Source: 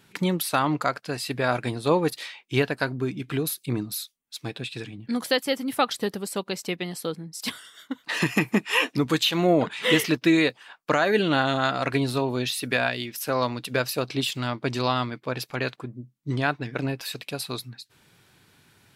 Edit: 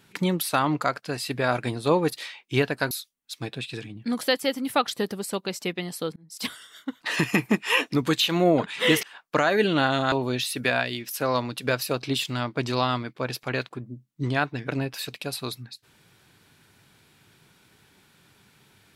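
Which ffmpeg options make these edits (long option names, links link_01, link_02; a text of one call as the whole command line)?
ffmpeg -i in.wav -filter_complex "[0:a]asplit=5[link_01][link_02][link_03][link_04][link_05];[link_01]atrim=end=2.912[link_06];[link_02]atrim=start=3.938:end=7.19,asetpts=PTS-STARTPTS,afade=type=out:start_time=3.248:duration=0.004:curve=hsin[link_07];[link_03]atrim=start=7.19:end=10.062,asetpts=PTS-STARTPTS,afade=type=in:duration=0.3[link_08];[link_04]atrim=start=10.578:end=11.672[link_09];[link_05]atrim=start=12.188[link_10];[link_07][link_08]concat=n=2:v=0:a=1[link_11];[link_06][link_11]acrossfade=duration=0.004:curve1=hsin:curve2=hsin[link_12];[link_12][link_09]acrossfade=duration=0.004:curve1=hsin:curve2=hsin[link_13];[link_13][link_10]acrossfade=duration=0.004:curve1=hsin:curve2=hsin" out.wav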